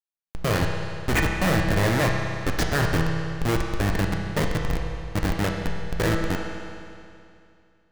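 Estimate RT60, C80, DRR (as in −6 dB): 2.5 s, 3.5 dB, 0.5 dB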